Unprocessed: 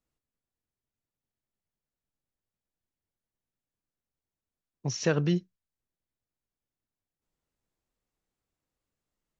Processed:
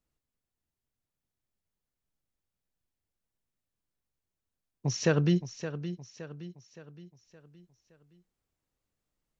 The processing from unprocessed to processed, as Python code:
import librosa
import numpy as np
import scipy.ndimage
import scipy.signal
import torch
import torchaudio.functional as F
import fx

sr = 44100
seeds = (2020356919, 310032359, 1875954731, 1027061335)

p1 = fx.low_shelf(x, sr, hz=120.0, db=4.5)
y = p1 + fx.echo_feedback(p1, sr, ms=568, feedback_pct=46, wet_db=-11.5, dry=0)